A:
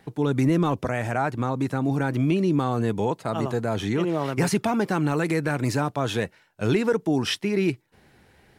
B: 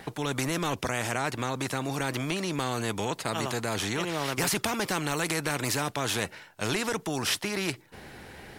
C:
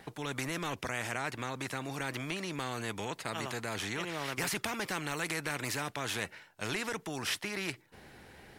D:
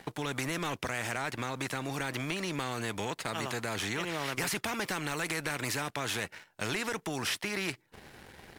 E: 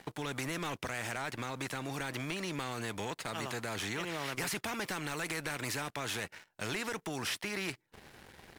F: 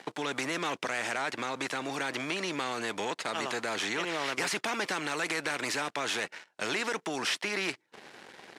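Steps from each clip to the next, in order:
spectrum-flattening compressor 2:1; trim +6 dB
dynamic bell 2 kHz, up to +5 dB, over -44 dBFS, Q 1.2; trim -8 dB
waveshaping leveller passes 2; compression 2:1, threshold -34 dBFS, peak gain reduction 6.5 dB
waveshaping leveller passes 1; trim -6.5 dB
band-pass 270–7700 Hz; trim +6 dB

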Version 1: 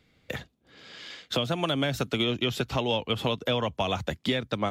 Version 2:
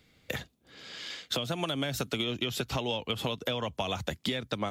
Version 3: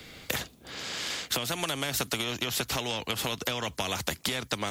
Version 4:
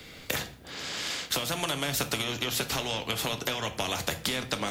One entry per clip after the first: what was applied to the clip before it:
treble shelf 4.9 kHz +8 dB; compression, threshold -28 dBFS, peak gain reduction 7.5 dB
spectrum-flattening compressor 2:1; trim +6.5 dB
simulated room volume 88 m³, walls mixed, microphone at 0.32 m

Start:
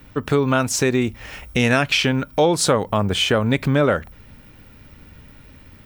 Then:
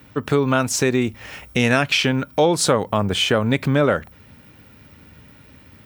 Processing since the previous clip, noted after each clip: high-pass 81 Hz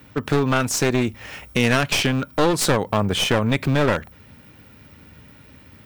one-sided wavefolder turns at -18.5 dBFS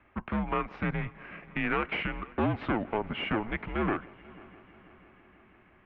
multi-head delay 164 ms, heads first and third, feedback 68%, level -23.5 dB; mistuned SSB -220 Hz 320–2800 Hz; trim -8 dB

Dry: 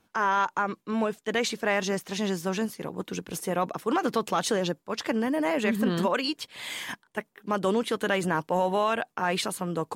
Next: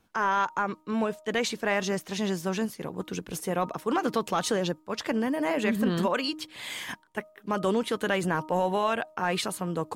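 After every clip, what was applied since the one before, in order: bass shelf 68 Hz +9.5 dB; de-hum 311.1 Hz, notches 4; trim -1 dB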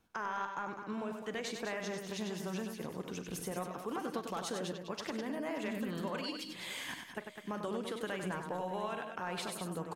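compression 3:1, threshold -32 dBFS, peak gain reduction 8.5 dB; on a send: multi-tap echo 43/96/204/576/674 ms -15/-6.5/-8.5/-19/-18.5 dB; on the sum: trim -6 dB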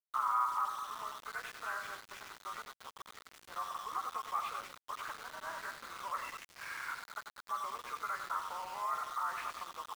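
knee-point frequency compression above 1 kHz 1.5:1; ladder band-pass 1.3 kHz, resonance 70%; small samples zeroed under -56 dBFS; trim +11.5 dB

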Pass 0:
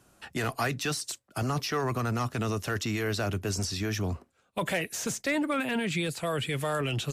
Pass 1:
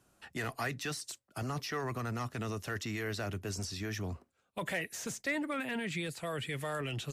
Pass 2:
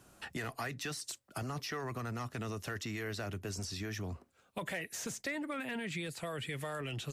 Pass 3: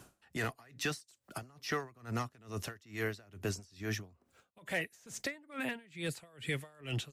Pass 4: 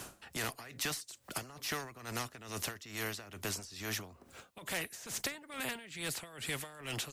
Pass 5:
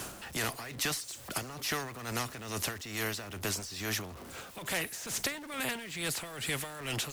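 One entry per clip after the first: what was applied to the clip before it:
dynamic bell 1.9 kHz, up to +6 dB, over -50 dBFS, Q 5.2; trim -7.5 dB
compression 2.5:1, threshold -50 dBFS, peak gain reduction 13.5 dB; trim +8 dB
logarithmic tremolo 2.3 Hz, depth 28 dB; trim +6 dB
spectrum-flattening compressor 2:1
jump at every zero crossing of -46.5 dBFS; trim +3 dB

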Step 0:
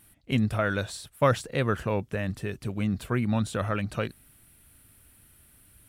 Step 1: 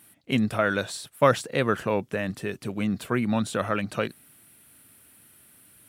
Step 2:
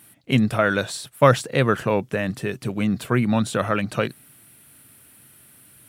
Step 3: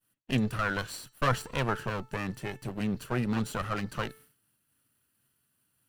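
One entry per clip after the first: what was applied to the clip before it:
high-pass 170 Hz 12 dB/octave; trim +3.5 dB
peaking EQ 130 Hz +6.5 dB 0.35 oct; trim +4 dB
comb filter that takes the minimum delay 0.69 ms; de-hum 438.7 Hz, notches 19; expander -42 dBFS; trim -8 dB

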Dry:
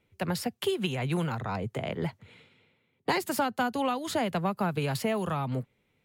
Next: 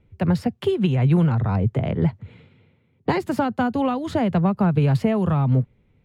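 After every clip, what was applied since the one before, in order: RIAA curve playback; trim +3.5 dB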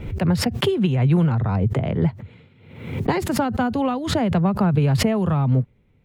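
swell ahead of each attack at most 69 dB/s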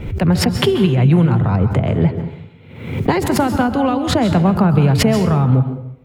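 plate-style reverb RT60 0.75 s, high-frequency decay 0.7×, pre-delay 120 ms, DRR 8.5 dB; trim +5 dB

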